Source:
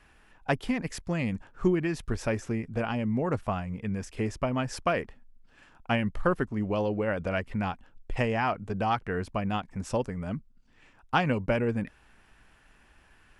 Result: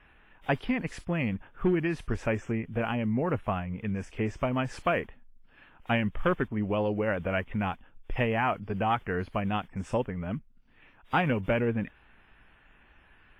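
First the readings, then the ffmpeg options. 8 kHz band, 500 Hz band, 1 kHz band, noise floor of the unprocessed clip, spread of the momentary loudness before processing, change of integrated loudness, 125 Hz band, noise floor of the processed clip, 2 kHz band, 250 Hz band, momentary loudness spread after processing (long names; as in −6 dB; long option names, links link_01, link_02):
can't be measured, 0.0 dB, 0.0 dB, −60 dBFS, 7 LU, 0.0 dB, 0.0 dB, −60 dBFS, +1.0 dB, 0.0 dB, 7 LU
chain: -af "asoftclip=type=hard:threshold=-18.5dB,highshelf=frequency=3600:width_type=q:width=1.5:gain=-7.5" -ar 32000 -c:a wmav2 -b:a 32k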